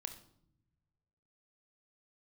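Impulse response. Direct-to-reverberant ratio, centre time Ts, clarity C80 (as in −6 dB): 7.0 dB, 11 ms, 14.0 dB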